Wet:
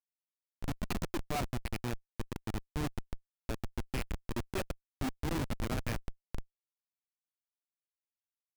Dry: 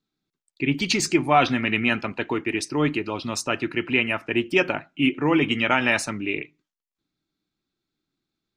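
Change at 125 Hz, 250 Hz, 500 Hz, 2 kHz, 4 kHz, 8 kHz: -7.0, -16.5, -17.0, -22.0, -18.5, -16.0 dB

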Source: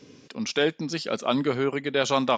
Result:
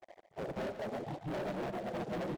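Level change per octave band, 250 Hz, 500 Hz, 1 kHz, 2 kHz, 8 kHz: -13.0, -13.0, -13.0, -16.5, -23.5 dB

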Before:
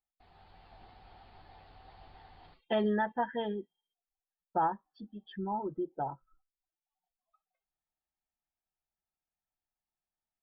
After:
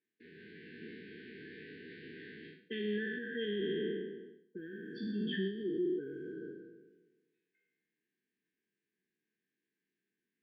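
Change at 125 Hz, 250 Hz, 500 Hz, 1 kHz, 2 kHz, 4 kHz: -0.5 dB, +0.5 dB, -1.0 dB, under -40 dB, +1.5 dB, +4.0 dB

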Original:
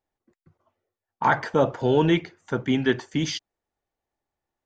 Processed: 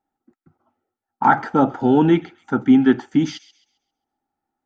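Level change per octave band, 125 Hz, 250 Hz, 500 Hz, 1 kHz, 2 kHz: +1.5, +9.5, +1.5, +6.5, +1.0 dB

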